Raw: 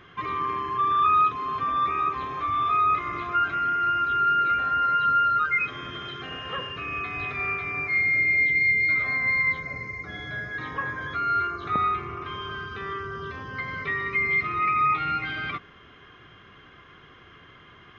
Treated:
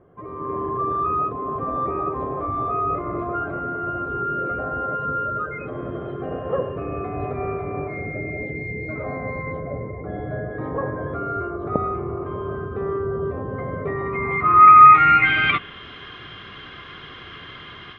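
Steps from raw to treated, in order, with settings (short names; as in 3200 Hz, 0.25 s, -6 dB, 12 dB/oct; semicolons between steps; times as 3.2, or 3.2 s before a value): AGC gain up to 12 dB; low-pass sweep 590 Hz -> 4100 Hz, 13.84–15.87; gain -2.5 dB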